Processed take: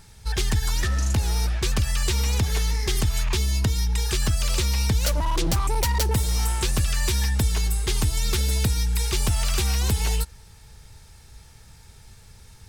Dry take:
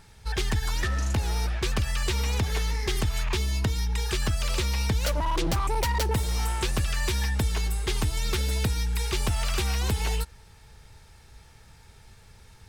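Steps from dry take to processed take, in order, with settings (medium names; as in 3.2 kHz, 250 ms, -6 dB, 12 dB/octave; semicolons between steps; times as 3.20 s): tone controls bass +4 dB, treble +7 dB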